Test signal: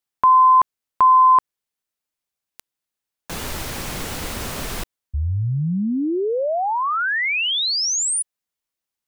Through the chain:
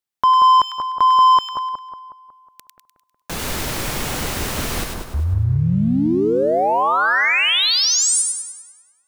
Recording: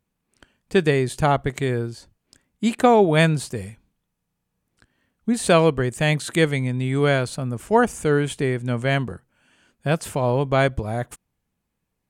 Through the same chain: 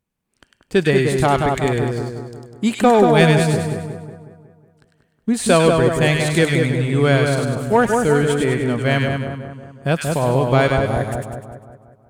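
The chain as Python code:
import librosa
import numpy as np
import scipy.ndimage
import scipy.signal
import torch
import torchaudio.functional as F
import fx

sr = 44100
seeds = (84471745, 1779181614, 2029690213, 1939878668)

y = fx.leveller(x, sr, passes=1)
y = fx.echo_split(y, sr, split_hz=1400.0, low_ms=183, high_ms=100, feedback_pct=52, wet_db=-3.5)
y = F.gain(torch.from_numpy(y), -1.0).numpy()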